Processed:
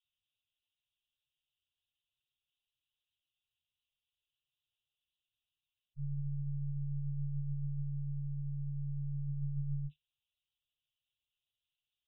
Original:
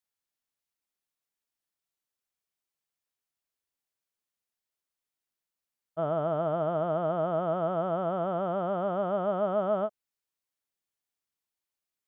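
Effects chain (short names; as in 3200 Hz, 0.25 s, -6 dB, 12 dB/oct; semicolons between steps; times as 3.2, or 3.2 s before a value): modulation noise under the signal 18 dB; monotone LPC vocoder at 8 kHz 140 Hz; tilt +2 dB/oct; spectral gate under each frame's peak -15 dB strong; Chebyshev band-stop 150–2700 Hz, order 5; gain +6.5 dB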